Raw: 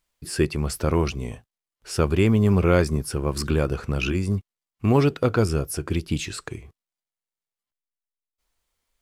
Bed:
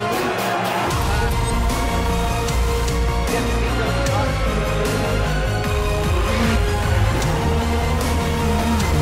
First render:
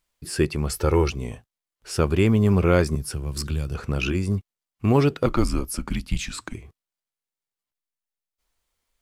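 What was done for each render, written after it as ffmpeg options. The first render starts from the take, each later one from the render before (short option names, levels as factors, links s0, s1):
-filter_complex "[0:a]asettb=1/sr,asplit=3[s0][s1][s2];[s0]atrim=end=0.704[s3];[s1]atrim=start=0.7:end=1.1,asetpts=PTS-STARTPTS,afade=t=in:d=0.004:c=qsin,afade=t=out:st=0.396:d=0.004:c=qsin,aecho=1:1:2.3:0.63,atrim=end_sample=17640[s4];[s2]atrim=start=1.096[s5];[s3][s4]acrossfade=d=0.004:c1=hsin:c2=qsin[s6];[s6][s5]acrossfade=d=0.004:c1=qsin:c2=hsin,asettb=1/sr,asplit=3[s7][s8][s9];[s7]atrim=end=2.954[s10];[s8]atrim=start=2.95:end=3.75,asetpts=PTS-STARTPTS,afade=t=in:d=0.004:c=qsin,afade=t=out:st=0.796:d=0.004:c=qsin,acrossover=split=160|3000[s11][s12][s13];[s12]acompressor=threshold=0.0158:ratio=6:attack=3.2:release=140:knee=2.83:detection=peak[s14];[s11][s14][s13]amix=inputs=3:normalize=0[s15];[s9]atrim=start=3.746[s16];[s10][s15]acrossfade=d=0.004:c1=hsin:c2=qsin[s17];[s17][s16]acrossfade=d=0.004:c1=qsin:c2=hsin,asettb=1/sr,asplit=3[s18][s19][s20];[s18]atrim=end=5.264[s21];[s19]atrim=start=5.26:end=6.54,asetpts=PTS-STARTPTS,afade=t=in:d=0.004:c=qsin,afade=t=out:st=1.276:d=0.004:c=qsin,afreqshift=-130[s22];[s20]atrim=start=6.536[s23];[s21][s22]acrossfade=d=0.004:c1=hsin:c2=qsin[s24];[s24][s23]acrossfade=d=0.004:c1=qsin:c2=hsin"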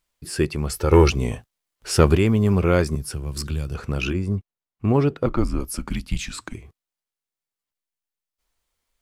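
-filter_complex "[0:a]asplit=3[s0][s1][s2];[s0]afade=t=out:st=0.91:d=0.02[s3];[s1]acontrast=87,afade=t=in:st=0.91:d=0.02,afade=t=out:st=2.16:d=0.02[s4];[s2]afade=t=in:st=2.16:d=0.02[s5];[s3][s4][s5]amix=inputs=3:normalize=0,asettb=1/sr,asplit=3[s6][s7][s8];[s6]atrim=end=4.134[s9];[s7]atrim=start=4.13:end=5.6,asetpts=PTS-STARTPTS,afade=t=in:d=0.004:c=qsin,afade=t=out:st=1.466:d=0.004:c=qsin,highshelf=f=2400:g=-11[s10];[s8]atrim=start=5.596[s11];[s9][s10]acrossfade=d=0.004:c1=hsin:c2=qsin[s12];[s12][s11]acrossfade=d=0.004:c1=qsin:c2=hsin"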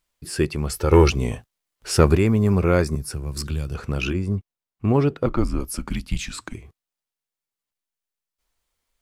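-filter_complex "[0:a]asettb=1/sr,asplit=3[s0][s1][s2];[s0]atrim=end=1.974[s3];[s1]atrim=start=1.97:end=3.38,asetpts=PTS-STARTPTS,afade=t=in:d=0.004:c=qsin,afade=t=out:st=1.406:d=0.004:c=qsin,equalizer=f=3100:t=o:w=0.24:g=-10.5[s4];[s2]atrim=start=3.376[s5];[s3][s4]acrossfade=d=0.004:c1=hsin:c2=qsin[s6];[s6][s5]acrossfade=d=0.004:c1=qsin:c2=hsin"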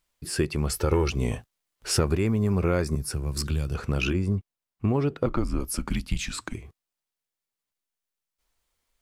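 -af "acompressor=threshold=0.1:ratio=6"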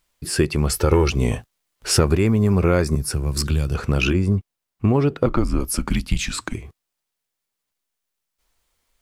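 -af "volume=2.11"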